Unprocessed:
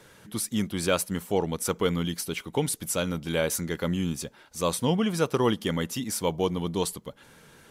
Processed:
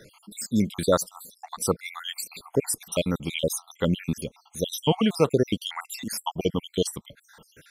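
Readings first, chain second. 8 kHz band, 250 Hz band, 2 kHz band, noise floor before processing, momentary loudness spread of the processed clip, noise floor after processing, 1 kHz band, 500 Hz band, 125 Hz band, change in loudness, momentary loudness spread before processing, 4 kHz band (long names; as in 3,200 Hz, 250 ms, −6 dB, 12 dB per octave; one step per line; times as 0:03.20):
−0.5 dB, +1.0 dB, −2.5 dB, −55 dBFS, 12 LU, −63 dBFS, −0.5 dB, +1.0 dB, 0.0 dB, +0.5 dB, 7 LU, +1.5 dB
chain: time-frequency cells dropped at random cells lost 68%
level +5 dB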